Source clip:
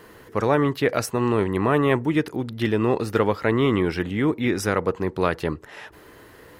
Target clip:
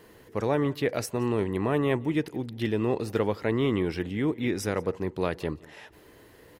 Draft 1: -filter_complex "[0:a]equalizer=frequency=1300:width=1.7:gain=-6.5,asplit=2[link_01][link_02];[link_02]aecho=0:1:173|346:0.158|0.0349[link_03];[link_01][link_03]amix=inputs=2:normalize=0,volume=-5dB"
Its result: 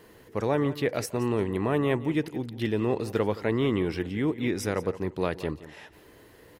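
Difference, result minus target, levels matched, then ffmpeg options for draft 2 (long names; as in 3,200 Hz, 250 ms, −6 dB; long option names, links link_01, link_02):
echo-to-direct +7 dB
-filter_complex "[0:a]equalizer=frequency=1300:width=1.7:gain=-6.5,asplit=2[link_01][link_02];[link_02]aecho=0:1:173|346:0.0708|0.0156[link_03];[link_01][link_03]amix=inputs=2:normalize=0,volume=-5dB"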